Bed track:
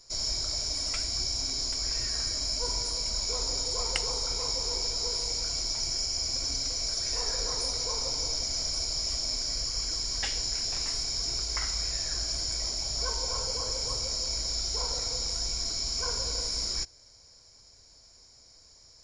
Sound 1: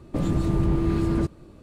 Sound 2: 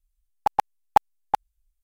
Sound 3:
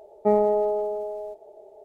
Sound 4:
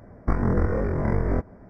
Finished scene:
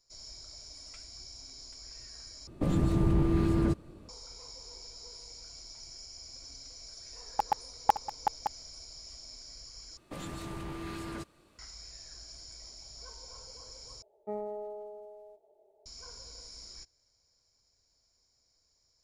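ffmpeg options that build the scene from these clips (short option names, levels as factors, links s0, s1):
-filter_complex "[1:a]asplit=2[s0][s1];[0:a]volume=0.141[s2];[2:a]aecho=1:1:566:0.316[s3];[s1]tiltshelf=f=630:g=-9.5[s4];[s2]asplit=4[s5][s6][s7][s8];[s5]atrim=end=2.474[s9];[s0]atrim=end=1.62,asetpts=PTS-STARTPTS,volume=0.668[s10];[s6]atrim=start=4.086:end=9.974[s11];[s4]atrim=end=1.62,asetpts=PTS-STARTPTS,volume=0.266[s12];[s7]atrim=start=11.586:end=14.024[s13];[3:a]atrim=end=1.84,asetpts=PTS-STARTPTS,volume=0.133[s14];[s8]atrim=start=15.856[s15];[s3]atrim=end=1.83,asetpts=PTS-STARTPTS,volume=0.447,afade=t=in:d=0.004:c=hsin,afade=t=out:st=1.826:d=0.004:c=hsin,adelay=6930[s16];[s9][s10]acrossfade=d=0.004:c1=hsin:c2=hsin[s17];[s17][s11]acrossfade=d=0.004:c1=hsin:c2=hsin[s18];[s18][s12]acrossfade=d=0.004:c1=hsin:c2=hsin[s19];[s19][s13]acrossfade=d=0.004:c1=hsin:c2=hsin[s20];[s20][s14]acrossfade=d=0.004:c1=hsin:c2=hsin[s21];[s21][s15]acrossfade=d=0.004:c1=hsin:c2=hsin[s22];[s22][s16]amix=inputs=2:normalize=0"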